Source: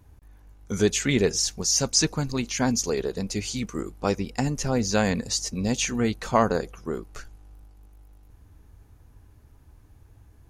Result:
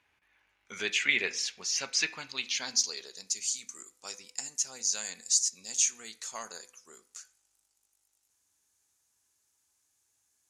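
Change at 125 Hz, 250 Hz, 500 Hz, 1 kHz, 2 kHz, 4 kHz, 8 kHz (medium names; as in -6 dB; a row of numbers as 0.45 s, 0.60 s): under -30 dB, -25.5 dB, -20.0 dB, -17.5 dB, -0.5 dB, -3.0 dB, -1.5 dB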